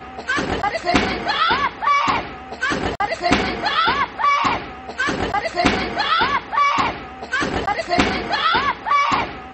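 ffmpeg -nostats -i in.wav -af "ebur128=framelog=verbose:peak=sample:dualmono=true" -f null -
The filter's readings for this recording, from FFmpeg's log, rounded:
Integrated loudness:
  I:         -16.2 LUFS
  Threshold: -26.3 LUFS
Loudness range:
  LRA:         1.1 LU
  Threshold: -36.4 LUFS
  LRA low:   -17.0 LUFS
  LRA high:  -15.9 LUFS
Sample peak:
  Peak:       -2.2 dBFS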